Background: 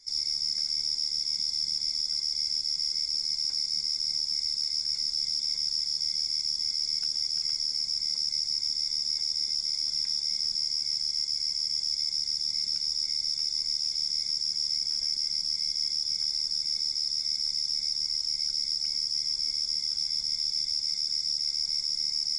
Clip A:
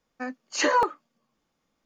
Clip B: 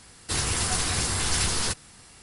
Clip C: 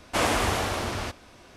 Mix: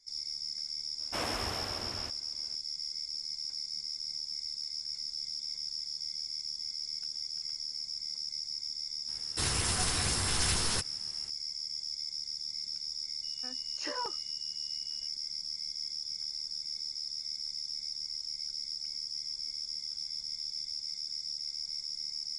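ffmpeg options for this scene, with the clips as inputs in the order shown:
-filter_complex "[0:a]volume=-9dB[a];[1:a]aeval=exprs='val(0)+0.00891*sin(2*PI*2900*n/s)':c=same[b];[3:a]atrim=end=1.56,asetpts=PTS-STARTPTS,volume=-12dB,afade=t=in:d=0.004:c=hsin,afade=t=out:st=1.556:d=0.004:c=hsin,adelay=990[c];[2:a]atrim=end=2.22,asetpts=PTS-STARTPTS,volume=-5dB,afade=t=in:d=0.004:c=hsin,afade=t=out:st=2.216:d=0.004:c=hsin,adelay=9080[d];[b]atrim=end=1.85,asetpts=PTS-STARTPTS,volume=-17dB,afade=t=in:d=0.004:c=hsin,afade=t=out:st=1.846:d=0.004:c=hsin,adelay=13230[e];[a][c][d][e]amix=inputs=4:normalize=0"

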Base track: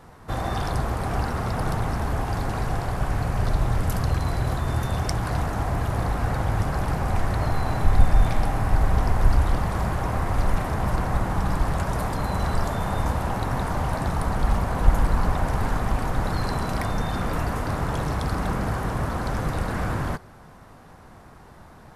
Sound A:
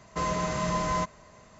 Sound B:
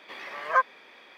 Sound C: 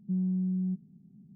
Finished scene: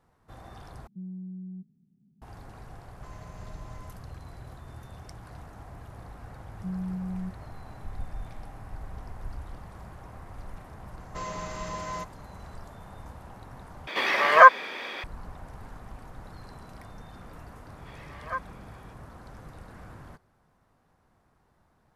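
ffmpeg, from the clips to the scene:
-filter_complex "[3:a]asplit=2[a][b];[1:a]asplit=2[c][d];[2:a]asplit=2[e][f];[0:a]volume=-20dB[g];[c]acompressor=threshold=-30dB:ratio=6:attack=3.2:release=140:knee=1:detection=peak[h];[d]lowshelf=f=210:g=-8.5[i];[e]alimiter=level_in=15.5dB:limit=-1dB:release=50:level=0:latency=1[j];[g]asplit=3[k][l][m];[k]atrim=end=0.874[n];[a]atrim=end=1.35,asetpts=PTS-STARTPTS,volume=-10dB[o];[l]atrim=start=2.216:end=13.874[p];[j]atrim=end=1.17,asetpts=PTS-STARTPTS,volume=-0.5dB[q];[m]atrim=start=15.036[r];[h]atrim=end=1.59,asetpts=PTS-STARTPTS,volume=-17.5dB,afade=t=in:d=0.004:c=hsin,afade=t=out:st=1.586:d=0.004:c=hsin,adelay=2870[s];[b]atrim=end=1.35,asetpts=PTS-STARTPTS,volume=-4dB,afade=t=in:d=0.004:c=hsin,afade=t=out:st=1.346:d=0.004:c=hsin,adelay=6550[t];[i]atrim=end=1.59,asetpts=PTS-STARTPTS,volume=-6.5dB,afade=t=in:d=0.004:c=hsin,afade=t=out:st=1.586:d=0.004:c=hsin,adelay=10990[u];[f]atrim=end=1.17,asetpts=PTS-STARTPTS,volume=-11dB,afade=t=in:d=0.004:c=hsin,afade=t=out:st=1.166:d=0.004:c=hsin,adelay=17770[v];[n][o]acrossfade=d=0.004:c1=hsin:c2=hsin[w];[w][p]acrossfade=d=0.004:c1=hsin:c2=hsin[x];[x][q]acrossfade=d=0.004:c1=hsin:c2=hsin[y];[y][r]acrossfade=d=0.004:c1=hsin:c2=hsin[z];[z][s][t][u][v]amix=inputs=5:normalize=0"

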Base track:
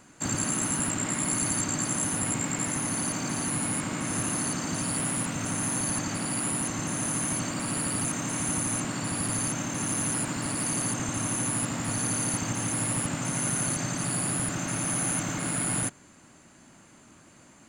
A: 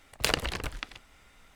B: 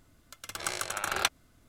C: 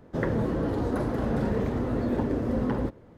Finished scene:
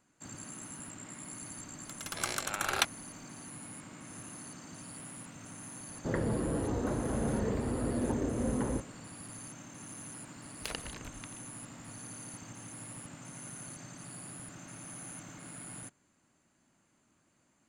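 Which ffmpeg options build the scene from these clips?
-filter_complex "[0:a]volume=-17.5dB[a];[2:a]atrim=end=1.68,asetpts=PTS-STARTPTS,volume=-1.5dB,afade=t=in:d=0.004:c=hsin,afade=t=out:st=1.676:d=0.004:c=hsin,adelay=1570[b];[3:a]atrim=end=3.17,asetpts=PTS-STARTPTS,volume=-5.5dB,afade=t=in:d=0.004:c=hsin,afade=t=out:st=3.166:d=0.004:c=hsin,adelay=5910[c];[1:a]atrim=end=1.55,asetpts=PTS-STARTPTS,volume=-13dB,afade=t=in:d=0.004:c=hsin,afade=t=out:st=1.546:d=0.004:c=hsin,adelay=10410[d];[a][b][c][d]amix=inputs=4:normalize=0"

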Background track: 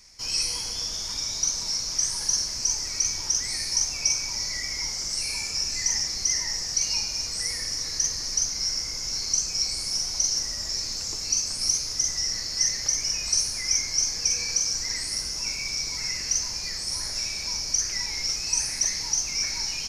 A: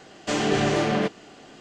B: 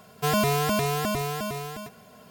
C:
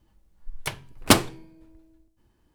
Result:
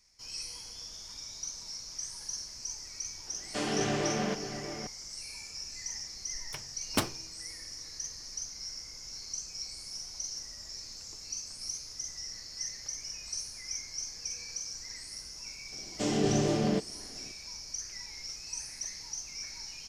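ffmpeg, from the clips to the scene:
-filter_complex "[1:a]asplit=2[a][b];[0:a]volume=-14dB[c];[a]asplit=2[d][e];[e]adelay=641.4,volume=-9dB,highshelf=f=4k:g=-14.4[f];[d][f]amix=inputs=2:normalize=0[g];[b]equalizer=f=1.6k:w=0.5:g=-12.5[h];[g]atrim=end=1.6,asetpts=PTS-STARTPTS,volume=-8.5dB,afade=t=in:d=0.004:c=hsin,afade=t=out:st=1.596:d=0.004:c=hsin,adelay=3270[i];[3:a]atrim=end=2.54,asetpts=PTS-STARTPTS,volume=-13dB,afade=t=in:d=0.004:c=hsin,afade=t=out:st=2.536:d=0.004:c=hsin,adelay=5870[j];[h]atrim=end=1.6,asetpts=PTS-STARTPTS,volume=-2dB,afade=t=in:d=0.004:c=hsin,afade=t=out:st=1.596:d=0.004:c=hsin,adelay=693252S[k];[c][i][j][k]amix=inputs=4:normalize=0"

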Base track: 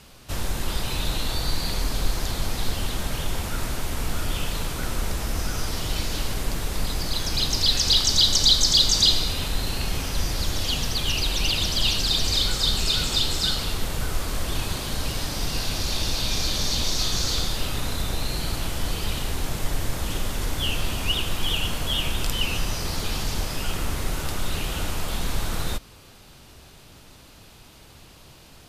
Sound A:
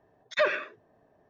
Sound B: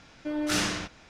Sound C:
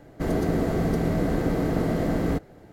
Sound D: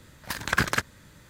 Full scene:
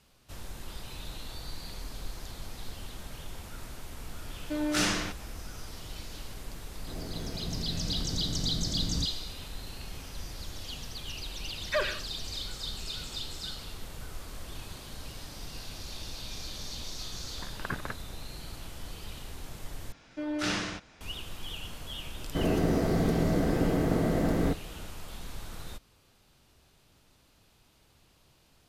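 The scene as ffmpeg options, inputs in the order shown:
-filter_complex "[2:a]asplit=2[a][b];[3:a]asplit=2[c][d];[0:a]volume=-15dB[e];[c]asubboost=boost=9:cutoff=190[f];[4:a]lowpass=1.4k[g];[b]acrossover=split=5900[h][i];[i]acompressor=threshold=-46dB:ratio=4:attack=1:release=60[j];[h][j]amix=inputs=2:normalize=0[k];[e]asplit=2[l][m];[l]atrim=end=19.924[n];[k]atrim=end=1.09,asetpts=PTS-STARTPTS,volume=-3dB[o];[m]atrim=start=21.006[p];[a]atrim=end=1.09,asetpts=PTS-STARTPTS,volume=-0.5dB,afade=t=in:d=0.004:c=hsin,afade=t=out:st=1.086:d=0.004:c=hsin,adelay=187425S[q];[f]atrim=end=2.72,asetpts=PTS-STARTPTS,volume=-17.5dB,afade=t=in:d=0.004:c=hsin,afade=t=out:st=2.716:d=0.004:c=hsin,adelay=6670[r];[1:a]atrim=end=1.29,asetpts=PTS-STARTPTS,volume=-4.5dB,afade=t=in:d=0.004:c=hsin,afade=t=out:st=1.286:d=0.004:c=hsin,adelay=11350[s];[g]atrim=end=1.29,asetpts=PTS-STARTPTS,volume=-9dB,afade=t=in:d=0.004:c=hsin,afade=t=out:st=1.286:d=0.004:c=hsin,adelay=17120[t];[d]atrim=end=2.72,asetpts=PTS-STARTPTS,volume=-2.5dB,afade=t=in:d=0.004:c=hsin,afade=t=out:st=2.716:d=0.004:c=hsin,adelay=22150[u];[n][o]acrossfade=d=0.004:c1=hsin:c2=hsin[v];[v][p]acrossfade=d=0.004:c1=hsin:c2=hsin[w];[w][q][r][s][t][u]amix=inputs=6:normalize=0"

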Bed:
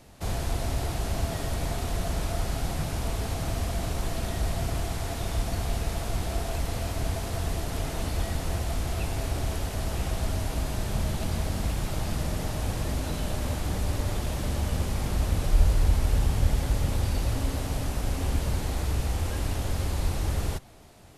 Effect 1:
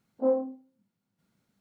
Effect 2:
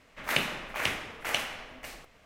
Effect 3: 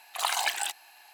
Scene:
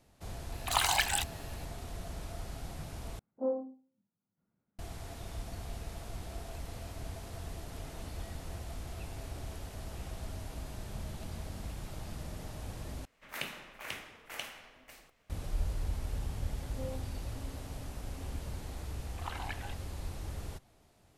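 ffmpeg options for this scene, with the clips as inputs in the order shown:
-filter_complex "[3:a]asplit=2[a][b];[1:a]asplit=2[c][d];[0:a]volume=-13dB[e];[c]lowpass=1.4k[f];[2:a]highshelf=f=8.9k:g=7[g];[d]alimiter=limit=-23.5dB:level=0:latency=1:release=71[h];[b]lowpass=2.3k[i];[e]asplit=3[j][k][l];[j]atrim=end=3.194[m];[f]atrim=end=1.6,asetpts=PTS-STARTPTS,volume=-7.5dB[n];[k]atrim=start=4.786:end=13.054[o];[g]atrim=end=2.25,asetpts=PTS-STARTPTS,volume=-12dB[p];[l]atrim=start=15.296[q];[a]atrim=end=1.13,asetpts=PTS-STARTPTS,volume=-0.5dB,afade=t=in:d=0.004:c=hsin,afade=t=out:st=1.126:d=0.004:c=hsin,adelay=520[r];[h]atrim=end=1.6,asetpts=PTS-STARTPTS,volume=-12.5dB,afade=t=in:d=0.004:c=hsin,afade=t=out:st=1.596:d=0.004:c=hsin,adelay=16560[s];[i]atrim=end=1.13,asetpts=PTS-STARTPTS,volume=-11.5dB,afade=t=in:d=0.004:c=hsin,afade=t=out:st=1.126:d=0.004:c=hsin,adelay=19030[t];[m][n]acrossfade=d=0.004:c1=hsin:c2=hsin[u];[u][o]acrossfade=d=0.004:c1=hsin:c2=hsin[v];[v][p]acrossfade=d=0.004:c1=hsin:c2=hsin[w];[w][q]acrossfade=d=0.004:c1=hsin:c2=hsin[x];[x][r][s][t]amix=inputs=4:normalize=0"

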